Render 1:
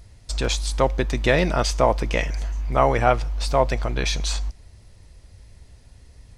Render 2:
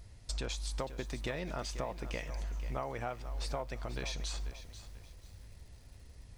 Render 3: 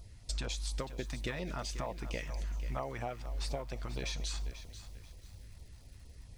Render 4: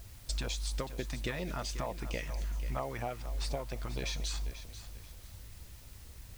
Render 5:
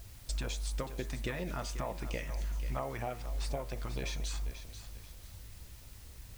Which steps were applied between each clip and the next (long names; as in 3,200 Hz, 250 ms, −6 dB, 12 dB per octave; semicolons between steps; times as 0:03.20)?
downward compressor 12 to 1, threshold −28 dBFS, peak gain reduction 17 dB; feedback echo at a low word length 489 ms, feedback 35%, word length 8 bits, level −12 dB; level −6 dB
auto-filter notch saw down 4.3 Hz 320–2,000 Hz; level +1 dB
bit-depth reduction 10 bits, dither triangular; level +1.5 dB
hum removal 80.02 Hz, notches 29; dynamic equaliser 4,400 Hz, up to −5 dB, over −52 dBFS, Q 1.2